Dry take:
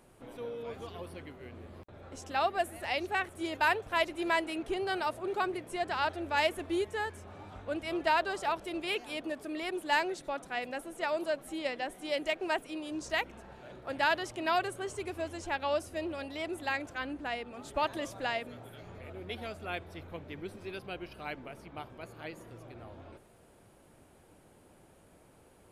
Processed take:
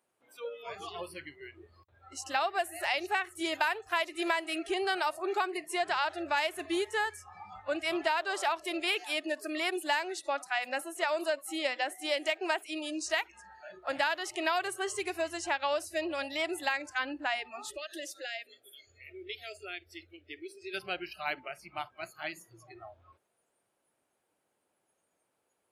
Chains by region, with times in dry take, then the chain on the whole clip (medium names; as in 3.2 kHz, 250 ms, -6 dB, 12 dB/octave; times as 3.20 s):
17.71–20.74 s: compression 2.5:1, threshold -40 dBFS + treble shelf 9.8 kHz -2.5 dB + static phaser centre 390 Hz, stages 4
whole clip: high-pass 700 Hz 6 dB/octave; spectral noise reduction 23 dB; compression 6:1, threshold -35 dBFS; trim +8.5 dB